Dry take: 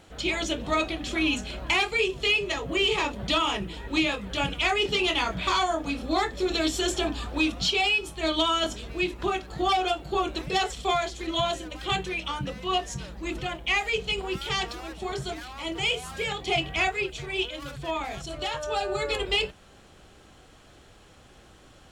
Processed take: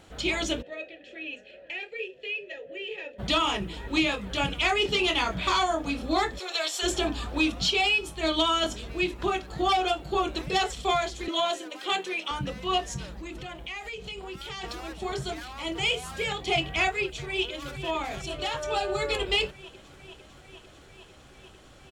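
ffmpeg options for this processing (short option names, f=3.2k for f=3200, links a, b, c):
-filter_complex "[0:a]asplit=3[a][b][c];[a]afade=t=out:st=0.61:d=0.02[d];[b]asplit=3[e][f][g];[e]bandpass=f=530:t=q:w=8,volume=0dB[h];[f]bandpass=f=1.84k:t=q:w=8,volume=-6dB[i];[g]bandpass=f=2.48k:t=q:w=8,volume=-9dB[j];[h][i][j]amix=inputs=3:normalize=0,afade=t=in:st=0.61:d=0.02,afade=t=out:st=3.18:d=0.02[k];[c]afade=t=in:st=3.18:d=0.02[l];[d][k][l]amix=inputs=3:normalize=0,asplit=3[m][n][o];[m]afade=t=out:st=6.38:d=0.02[p];[n]highpass=f=580:w=0.5412,highpass=f=580:w=1.3066,afade=t=in:st=6.38:d=0.02,afade=t=out:st=6.82:d=0.02[q];[o]afade=t=in:st=6.82:d=0.02[r];[p][q][r]amix=inputs=3:normalize=0,asettb=1/sr,asplit=3[s][t][u];[s]atrim=end=11.284[v];[t]atrim=start=11.28:end=12.31,asetpts=PTS-STARTPTS,afade=t=in:d=0.004:c=qsin,afade=t=out:st=1.026:d=0.004:c=qsin,highpass=f=280:w=0.5412,highpass=f=280:w=1.3066[w];[u]atrim=start=12.306[x];[v][w]acrossfade=d=0.004:c1=hsin:c2=qsin[y];[y][x]acrossfade=d=0.004:c1=qsin:c2=hsin,asplit=3[z][aa][ab];[z]afade=t=out:st=13.2:d=0.02[ac];[aa]acompressor=threshold=-36dB:ratio=4:attack=3.2:release=140:knee=1:detection=peak,afade=t=in:st=13.2:d=0.02,afade=t=out:st=14.63:d=0.02[ad];[ab]afade=t=in:st=14.63:d=0.02[ae];[ac][ad][ae]amix=inputs=3:normalize=0,asplit=2[af][ag];[ag]afade=t=in:st=17.03:d=0.01,afade=t=out:st=17.88:d=0.01,aecho=0:1:450|900|1350|1800|2250|2700|3150|3600|4050|4500|4950|5400:0.281838|0.225471|0.180377|0.144301|0.115441|0.0923528|0.0738822|0.0591058|0.0472846|0.0378277|0.0302622|0.0242097[ah];[af][ah]amix=inputs=2:normalize=0"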